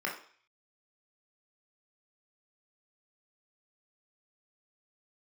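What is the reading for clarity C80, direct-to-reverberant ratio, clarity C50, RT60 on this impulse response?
12.0 dB, -2.5 dB, 7.5 dB, 0.45 s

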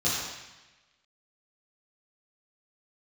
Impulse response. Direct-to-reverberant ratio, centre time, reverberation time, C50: -10.0 dB, 83 ms, 1.1 s, -1.0 dB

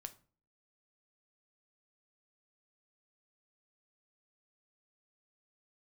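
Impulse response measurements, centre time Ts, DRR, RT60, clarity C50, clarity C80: 5 ms, 8.5 dB, 0.40 s, 17.0 dB, 22.5 dB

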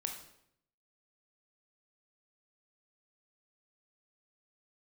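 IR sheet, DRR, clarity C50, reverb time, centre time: 3.0 dB, 6.5 dB, 0.75 s, 24 ms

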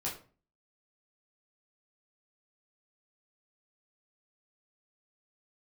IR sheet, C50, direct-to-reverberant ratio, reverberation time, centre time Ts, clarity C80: 7.5 dB, -5.5 dB, 0.40 s, 28 ms, 13.0 dB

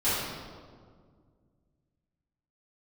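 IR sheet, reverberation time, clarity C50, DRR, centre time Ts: 1.9 s, -2.5 dB, -15.0 dB, 112 ms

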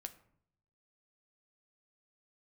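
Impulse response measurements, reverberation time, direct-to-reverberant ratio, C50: 0.65 s, 7.5 dB, 15.0 dB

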